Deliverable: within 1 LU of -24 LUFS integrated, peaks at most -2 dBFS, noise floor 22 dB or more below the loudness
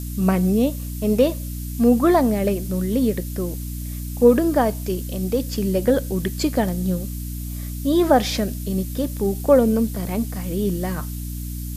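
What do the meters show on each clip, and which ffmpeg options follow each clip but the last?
hum 60 Hz; highest harmonic 300 Hz; hum level -27 dBFS; noise floor -30 dBFS; noise floor target -44 dBFS; loudness -21.5 LUFS; peak level -3.0 dBFS; loudness target -24.0 LUFS
-> -af "bandreject=f=60:t=h:w=4,bandreject=f=120:t=h:w=4,bandreject=f=180:t=h:w=4,bandreject=f=240:t=h:w=4,bandreject=f=300:t=h:w=4"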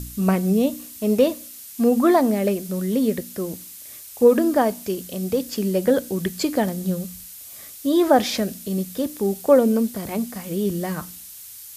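hum not found; noise floor -41 dBFS; noise floor target -44 dBFS
-> -af "afftdn=nr=6:nf=-41"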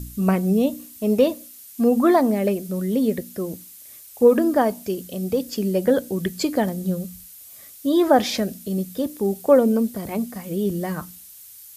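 noise floor -44 dBFS; loudness -21.5 LUFS; peak level -4.0 dBFS; loudness target -24.0 LUFS
-> -af "volume=0.75"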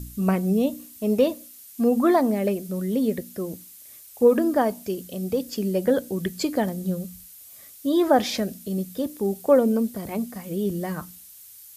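loudness -24.0 LUFS; peak level -6.5 dBFS; noise floor -47 dBFS

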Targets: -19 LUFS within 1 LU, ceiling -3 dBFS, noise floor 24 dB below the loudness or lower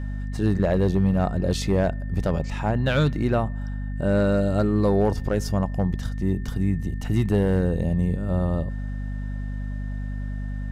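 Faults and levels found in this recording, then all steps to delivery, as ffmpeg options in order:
hum 50 Hz; highest harmonic 250 Hz; hum level -27 dBFS; steady tone 1.8 kHz; tone level -48 dBFS; loudness -24.5 LUFS; peak level -11.0 dBFS; loudness target -19.0 LUFS
-> -af "bandreject=f=50:t=h:w=6,bandreject=f=100:t=h:w=6,bandreject=f=150:t=h:w=6,bandreject=f=200:t=h:w=6,bandreject=f=250:t=h:w=6"
-af "bandreject=f=1800:w=30"
-af "volume=1.88"

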